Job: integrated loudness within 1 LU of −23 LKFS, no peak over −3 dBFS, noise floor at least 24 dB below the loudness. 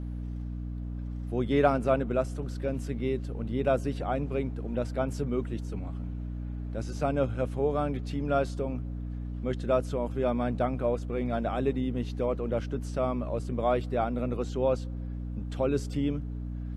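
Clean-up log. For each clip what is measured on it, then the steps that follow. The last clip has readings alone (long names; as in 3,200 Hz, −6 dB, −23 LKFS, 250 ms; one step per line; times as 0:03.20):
mains hum 60 Hz; hum harmonics up to 300 Hz; level of the hum −33 dBFS; integrated loudness −31.0 LKFS; sample peak −9.0 dBFS; target loudness −23.0 LKFS
→ mains-hum notches 60/120/180/240/300 Hz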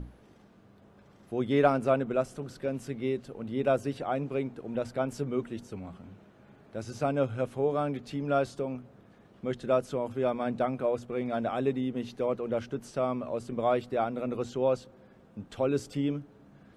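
mains hum none found; integrated loudness −31.0 LKFS; sample peak −9.5 dBFS; target loudness −23.0 LKFS
→ level +8 dB
brickwall limiter −3 dBFS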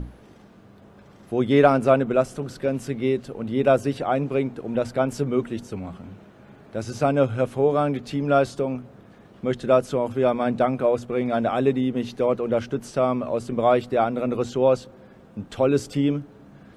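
integrated loudness −23.0 LKFS; sample peak −3.0 dBFS; background noise floor −50 dBFS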